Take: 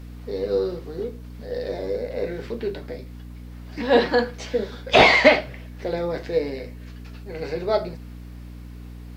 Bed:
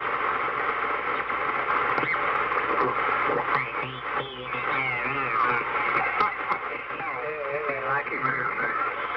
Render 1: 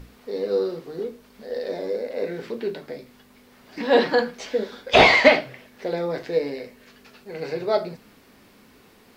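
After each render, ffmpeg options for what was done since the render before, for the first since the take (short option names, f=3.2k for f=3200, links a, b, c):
-af "bandreject=f=60:t=h:w=6,bandreject=f=120:t=h:w=6,bandreject=f=180:t=h:w=6,bandreject=f=240:t=h:w=6,bandreject=f=300:t=h:w=6"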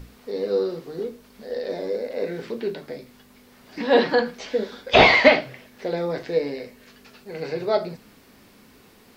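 -filter_complex "[0:a]acrossover=split=5600[a][b];[b]acompressor=threshold=-58dB:ratio=4:attack=1:release=60[c];[a][c]amix=inputs=2:normalize=0,bass=f=250:g=2,treble=f=4k:g=3"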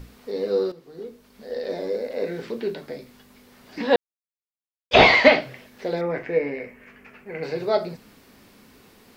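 -filter_complex "[0:a]asettb=1/sr,asplit=3[a][b][c];[a]atrim=end=6.014[d];[b]atrim=start=6.01:end=7.43,asetpts=PTS-STARTPTS,afade=t=in:d=0.004:c=qsin,afade=t=out:st=1.416:d=0.004:c=qsin,highshelf=f=3k:t=q:w=3:g=-10[e];[c]atrim=start=7.426[f];[d][e]acrossfade=d=0.004:c1=hsin:c2=qsin[g];[g][f]acrossfade=d=0.004:c1=qsin:c2=hsin,asplit=4[h][i][j][k];[h]atrim=end=0.72,asetpts=PTS-STARTPTS,afade=t=out:st=0.716:d=0.004:c=hsin:silence=0.199526[l];[i]atrim=start=0.72:end=3.96,asetpts=PTS-STARTPTS,afade=t=in:d=0.97:silence=0.199526,afade=t=out:st=3.236:d=0.004:c=hsin[m];[j]atrim=start=3.96:end=4.91,asetpts=PTS-STARTPTS,volume=0[n];[k]atrim=start=4.91,asetpts=PTS-STARTPTS,afade=t=in:d=0.004:c=hsin[o];[l][m][n][o]concat=n=4:v=0:a=1"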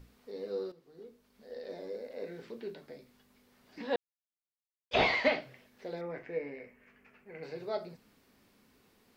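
-af "volume=-14dB"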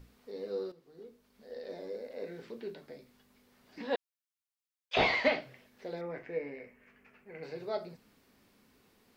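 -filter_complex "[0:a]asettb=1/sr,asplit=3[a][b][c];[a]atrim=end=3.954[d];[b]atrim=start=3.95:end=4.97,asetpts=PTS-STARTPTS,afade=t=in:d=0.004:c=qsin,afade=t=out:st=1.016:d=0.004:c=qsin,highpass=1.2k[e];[c]atrim=start=4.966[f];[d][e]acrossfade=d=0.004:c1=hsin:c2=qsin[g];[g][f]acrossfade=d=0.004:c1=qsin:c2=hsin"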